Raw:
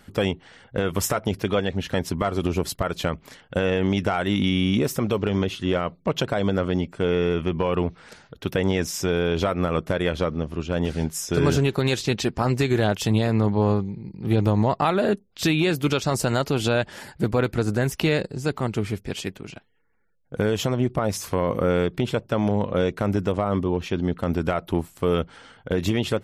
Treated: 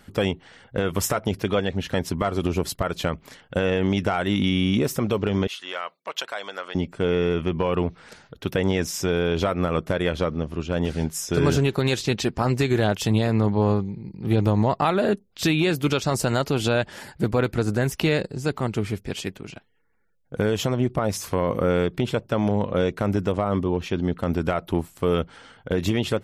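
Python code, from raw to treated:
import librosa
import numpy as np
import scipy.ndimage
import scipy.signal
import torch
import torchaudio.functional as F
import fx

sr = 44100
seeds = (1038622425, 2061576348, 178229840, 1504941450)

y = fx.highpass(x, sr, hz=980.0, slope=12, at=(5.47, 6.75))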